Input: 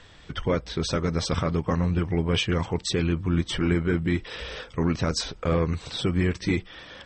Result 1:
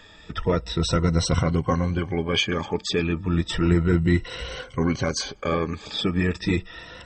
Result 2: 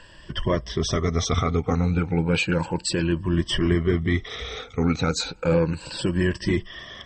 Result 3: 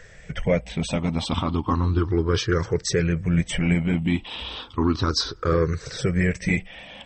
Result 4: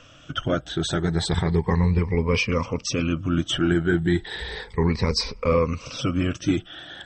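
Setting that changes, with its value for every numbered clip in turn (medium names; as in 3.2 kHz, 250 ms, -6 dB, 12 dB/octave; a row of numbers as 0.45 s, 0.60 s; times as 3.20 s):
drifting ripple filter, ripples per octave: 2, 1.3, 0.54, 0.89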